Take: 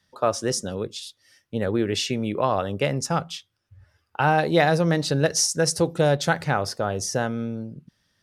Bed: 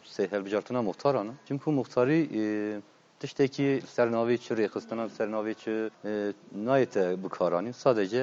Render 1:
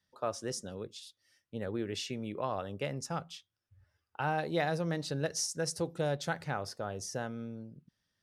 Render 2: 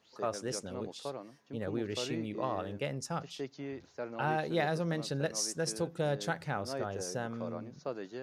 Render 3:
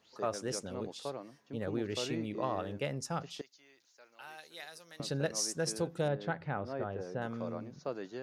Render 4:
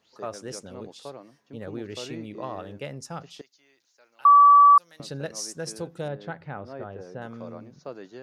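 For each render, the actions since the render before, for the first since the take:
gain -12.5 dB
add bed -15 dB
3.41–5 differentiator; 6.08–7.22 air absorption 340 m
4.25–4.78 bleep 1150 Hz -10 dBFS

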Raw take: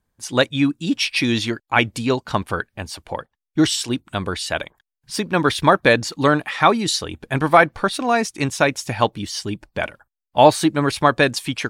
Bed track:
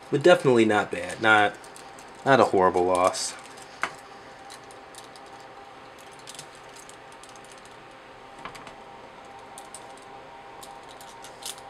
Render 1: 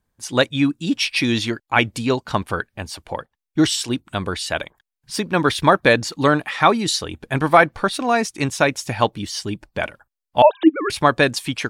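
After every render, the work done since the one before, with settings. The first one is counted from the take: 10.42–10.9 sine-wave speech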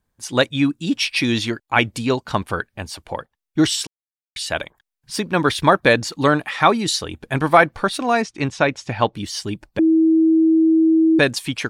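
3.87–4.36 mute; 8.22–9.15 air absorption 110 m; 9.79–11.19 bleep 322 Hz -11 dBFS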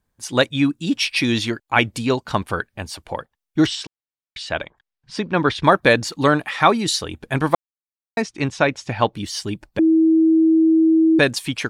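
3.66–5.64 air absorption 120 m; 7.55–8.17 mute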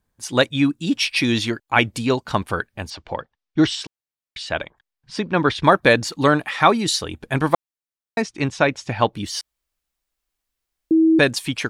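2.9–3.67 LPF 5700 Hz 24 dB/oct; 9.41–10.91 room tone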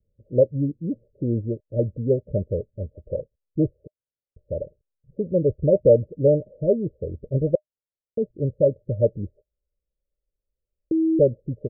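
Chebyshev low-pass 610 Hz, order 10; comb 1.8 ms, depth 61%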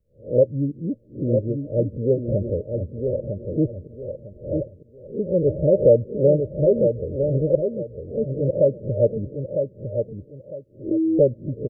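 spectral swells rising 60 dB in 0.30 s; on a send: feedback echo 0.954 s, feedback 26%, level -6 dB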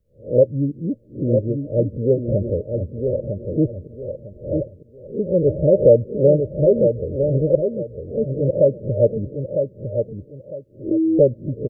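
gain +2.5 dB

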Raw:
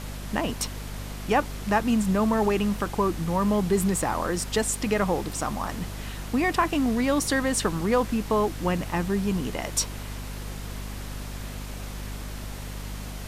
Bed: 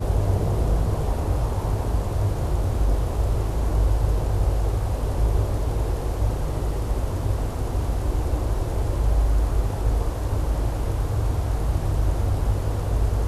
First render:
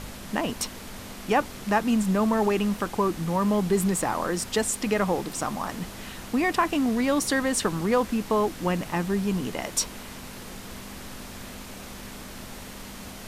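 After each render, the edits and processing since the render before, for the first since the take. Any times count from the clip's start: de-hum 50 Hz, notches 3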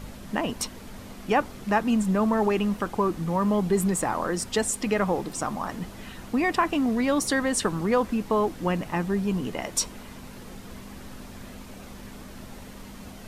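denoiser 7 dB, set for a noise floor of -41 dBFS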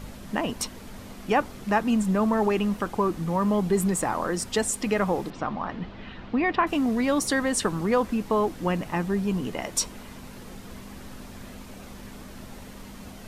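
5.3–6.67 LPF 3900 Hz 24 dB/oct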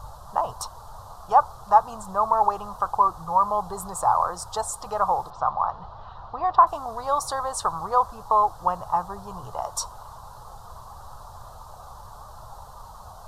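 EQ curve 120 Hz 0 dB, 250 Hz -27 dB, 830 Hz +10 dB, 1200 Hz +9 dB, 2200 Hz -28 dB, 3900 Hz -4 dB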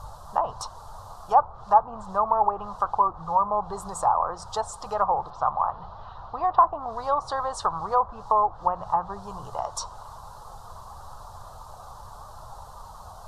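treble ducked by the level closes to 1100 Hz, closed at -17.5 dBFS; notches 60/120/180 Hz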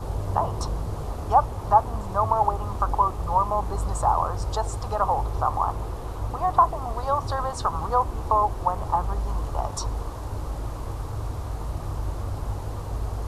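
add bed -7.5 dB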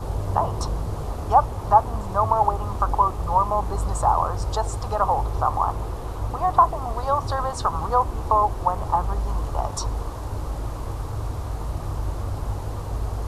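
gain +2 dB

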